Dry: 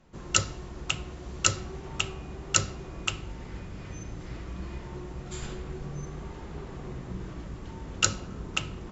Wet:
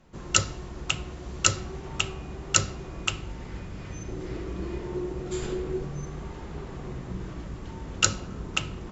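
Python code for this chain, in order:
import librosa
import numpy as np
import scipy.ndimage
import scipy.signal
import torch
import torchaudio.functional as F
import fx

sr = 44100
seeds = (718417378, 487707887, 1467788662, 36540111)

y = fx.peak_eq(x, sr, hz=380.0, db=10.5, octaves=0.79, at=(4.08, 5.85))
y = y * 10.0 ** (2.0 / 20.0)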